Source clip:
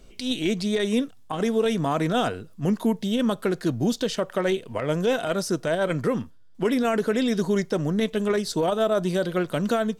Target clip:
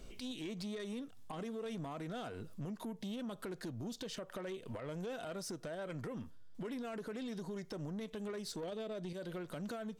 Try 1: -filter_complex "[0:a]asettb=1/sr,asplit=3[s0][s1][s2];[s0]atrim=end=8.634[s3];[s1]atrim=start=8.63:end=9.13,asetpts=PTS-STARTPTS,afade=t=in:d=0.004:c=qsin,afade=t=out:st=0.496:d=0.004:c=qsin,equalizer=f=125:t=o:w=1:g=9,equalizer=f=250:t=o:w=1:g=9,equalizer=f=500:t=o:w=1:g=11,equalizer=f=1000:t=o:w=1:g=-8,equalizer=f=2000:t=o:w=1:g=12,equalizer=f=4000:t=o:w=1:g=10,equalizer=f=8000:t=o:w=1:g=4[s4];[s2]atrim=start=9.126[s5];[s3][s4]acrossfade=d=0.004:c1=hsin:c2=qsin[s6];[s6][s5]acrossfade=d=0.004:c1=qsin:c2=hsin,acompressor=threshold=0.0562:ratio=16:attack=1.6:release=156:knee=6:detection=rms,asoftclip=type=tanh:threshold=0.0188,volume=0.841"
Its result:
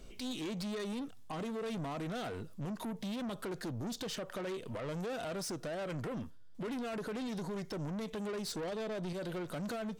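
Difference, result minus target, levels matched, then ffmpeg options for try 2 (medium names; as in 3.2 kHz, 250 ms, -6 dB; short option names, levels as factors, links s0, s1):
compression: peak gain reduction -8.5 dB
-filter_complex "[0:a]asettb=1/sr,asplit=3[s0][s1][s2];[s0]atrim=end=8.634[s3];[s1]atrim=start=8.63:end=9.13,asetpts=PTS-STARTPTS,afade=t=in:d=0.004:c=qsin,afade=t=out:st=0.496:d=0.004:c=qsin,equalizer=f=125:t=o:w=1:g=9,equalizer=f=250:t=o:w=1:g=9,equalizer=f=500:t=o:w=1:g=11,equalizer=f=1000:t=o:w=1:g=-8,equalizer=f=2000:t=o:w=1:g=12,equalizer=f=4000:t=o:w=1:g=10,equalizer=f=8000:t=o:w=1:g=4[s4];[s2]atrim=start=9.126[s5];[s3][s4]acrossfade=d=0.004:c1=hsin:c2=qsin[s6];[s6][s5]acrossfade=d=0.004:c1=qsin:c2=hsin,acompressor=threshold=0.02:ratio=16:attack=1.6:release=156:knee=6:detection=rms,asoftclip=type=tanh:threshold=0.0188,volume=0.841"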